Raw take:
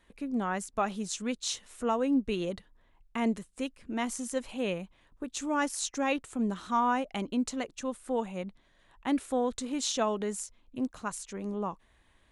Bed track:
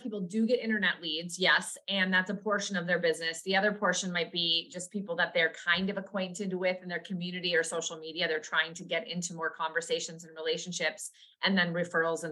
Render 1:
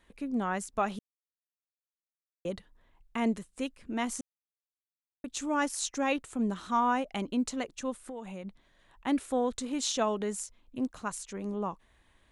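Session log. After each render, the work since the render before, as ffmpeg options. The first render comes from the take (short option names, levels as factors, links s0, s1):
-filter_complex "[0:a]asettb=1/sr,asplit=3[s0][s1][s2];[s0]atrim=end=8.024[s3];[s1]atrim=start=8.02:end=8.45,asetpts=PTS-STARTPTS,afade=t=in:d=0.004:c=qsin,afade=t=out:st=0.426:d=0.004:c=qsin,acompressor=threshold=0.0158:ratio=12:attack=3.2:release=140:knee=1:detection=peak[s4];[s2]atrim=start=8.446[s5];[s3][s4]acrossfade=d=0.004:c1=hsin:c2=qsin[s6];[s6][s5]acrossfade=d=0.004:c1=qsin:c2=hsin,asplit=5[s7][s8][s9][s10][s11];[s7]atrim=end=0.99,asetpts=PTS-STARTPTS,afade=t=out:st=0.986:d=0.004:c=hsin[s12];[s8]atrim=start=0.99:end=2.45,asetpts=PTS-STARTPTS,volume=0[s13];[s9]atrim=start=2.45:end=4.21,asetpts=PTS-STARTPTS,afade=t=in:d=0.004:c=hsin,afade=t=out:st=1.756:d=0.004:c=hsin[s14];[s10]atrim=start=4.21:end=5.24,asetpts=PTS-STARTPTS,volume=0[s15];[s11]atrim=start=5.24,asetpts=PTS-STARTPTS,afade=t=in:d=0.004:c=hsin[s16];[s12][s13][s14][s15][s16]concat=n=5:v=0:a=1"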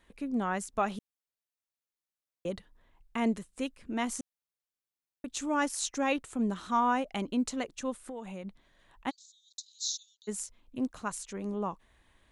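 -filter_complex "[0:a]asplit=3[s0][s1][s2];[s0]afade=t=out:st=9.09:d=0.02[s3];[s1]asuperpass=centerf=5200:order=12:qfactor=1.5,afade=t=in:st=9.09:d=0.02,afade=t=out:st=10.27:d=0.02[s4];[s2]afade=t=in:st=10.27:d=0.02[s5];[s3][s4][s5]amix=inputs=3:normalize=0"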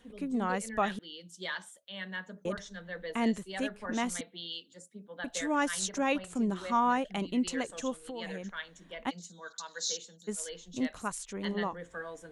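-filter_complex "[1:a]volume=0.237[s0];[0:a][s0]amix=inputs=2:normalize=0"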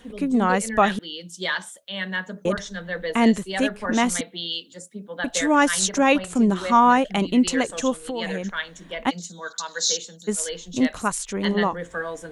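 -af "volume=3.76"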